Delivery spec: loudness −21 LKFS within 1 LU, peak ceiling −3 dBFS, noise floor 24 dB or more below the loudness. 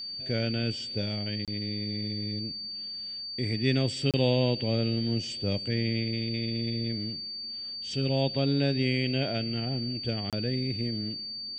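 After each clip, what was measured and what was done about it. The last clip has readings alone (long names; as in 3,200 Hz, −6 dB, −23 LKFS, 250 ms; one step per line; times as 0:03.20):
number of dropouts 3; longest dropout 27 ms; interfering tone 4,600 Hz; level of the tone −35 dBFS; integrated loudness −29.5 LKFS; sample peak −11.5 dBFS; target loudness −21.0 LKFS
→ repair the gap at 0:01.45/0:04.11/0:10.30, 27 ms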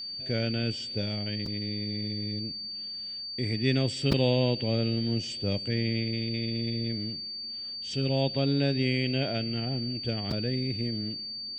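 number of dropouts 0; interfering tone 4,600 Hz; level of the tone −35 dBFS
→ notch filter 4,600 Hz, Q 30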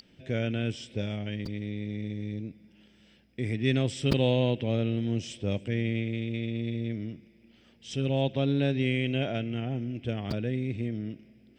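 interfering tone none found; integrated loudness −30.5 LKFS; sample peak −9.5 dBFS; target loudness −21.0 LKFS
→ level +9.5 dB
brickwall limiter −3 dBFS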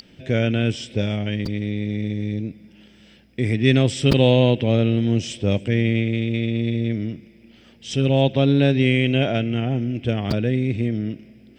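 integrated loudness −21.0 LKFS; sample peak −3.0 dBFS; background noise floor −51 dBFS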